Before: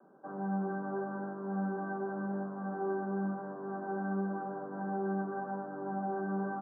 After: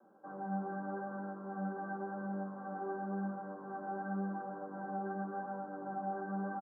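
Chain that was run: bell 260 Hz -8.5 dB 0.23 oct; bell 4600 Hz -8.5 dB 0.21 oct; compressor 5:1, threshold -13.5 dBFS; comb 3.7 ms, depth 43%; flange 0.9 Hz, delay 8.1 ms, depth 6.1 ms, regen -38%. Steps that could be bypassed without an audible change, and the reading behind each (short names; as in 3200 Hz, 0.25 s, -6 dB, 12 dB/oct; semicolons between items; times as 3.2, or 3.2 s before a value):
bell 4600 Hz: input band ends at 1600 Hz; compressor, threshold -13.5 dBFS: input peak -25.0 dBFS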